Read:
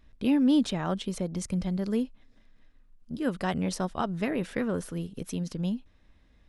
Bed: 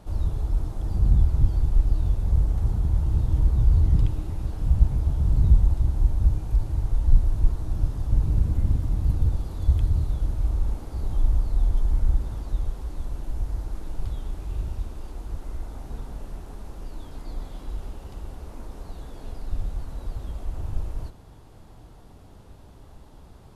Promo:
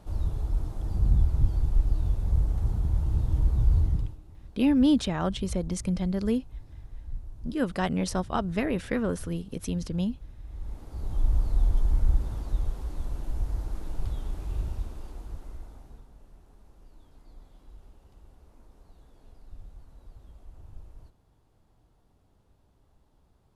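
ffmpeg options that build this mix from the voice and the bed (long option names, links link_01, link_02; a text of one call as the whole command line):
ffmpeg -i stem1.wav -i stem2.wav -filter_complex "[0:a]adelay=4350,volume=1.5dB[link_01];[1:a]volume=14.5dB,afade=type=out:start_time=3.78:duration=0.4:silence=0.158489,afade=type=in:start_time=10.46:duration=1:silence=0.125893,afade=type=out:start_time=14.6:duration=1.47:silence=0.16788[link_02];[link_01][link_02]amix=inputs=2:normalize=0" out.wav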